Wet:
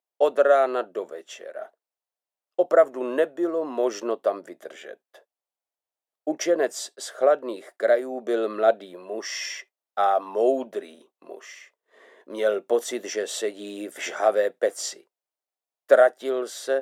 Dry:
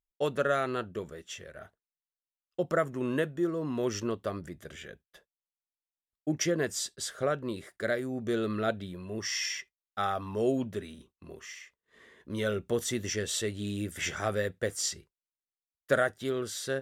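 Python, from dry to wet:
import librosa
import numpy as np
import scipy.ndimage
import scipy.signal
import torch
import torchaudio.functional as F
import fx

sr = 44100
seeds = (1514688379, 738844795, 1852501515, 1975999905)

y = scipy.signal.sosfilt(scipy.signal.butter(4, 280.0, 'highpass', fs=sr, output='sos'), x)
y = fx.peak_eq(y, sr, hz=670.0, db=14.0, octaves=1.3)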